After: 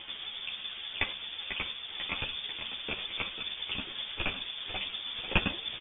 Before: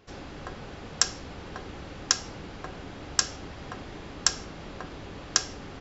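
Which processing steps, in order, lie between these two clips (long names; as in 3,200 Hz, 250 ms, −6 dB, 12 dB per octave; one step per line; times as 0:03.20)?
pitch shifter swept by a sawtooth −10.5 semitones, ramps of 944 ms
delay with pitch and tempo change per echo 394 ms, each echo −3 semitones, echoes 3, each echo −6 dB
in parallel at 0 dB: output level in coarse steps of 10 dB
on the sum: dynamic equaliser 970 Hz, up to +6 dB, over −48 dBFS, Q 4.8
upward compression, threshold −30 dBFS
frequency shifter −62 Hz
on a send: echo with shifted repeats 493 ms, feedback 61%, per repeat +32 Hz, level −9.5 dB
on the sum: voice inversion scrambler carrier 3,500 Hz
string-ensemble chorus
level −2 dB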